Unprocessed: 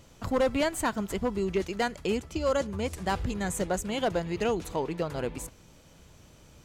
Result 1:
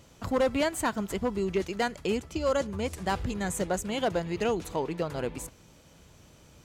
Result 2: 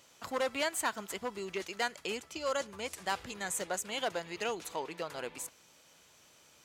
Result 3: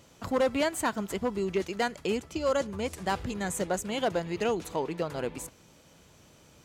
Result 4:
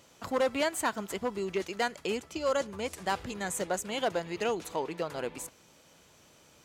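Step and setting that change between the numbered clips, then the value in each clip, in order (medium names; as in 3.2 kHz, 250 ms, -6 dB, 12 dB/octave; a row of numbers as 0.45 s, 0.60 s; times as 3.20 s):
high-pass, cutoff frequency: 44 Hz, 1.2 kHz, 150 Hz, 440 Hz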